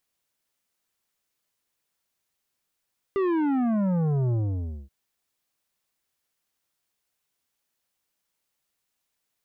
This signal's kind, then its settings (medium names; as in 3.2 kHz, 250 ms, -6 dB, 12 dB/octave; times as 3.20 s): sub drop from 400 Hz, over 1.73 s, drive 10.5 dB, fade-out 0.57 s, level -22.5 dB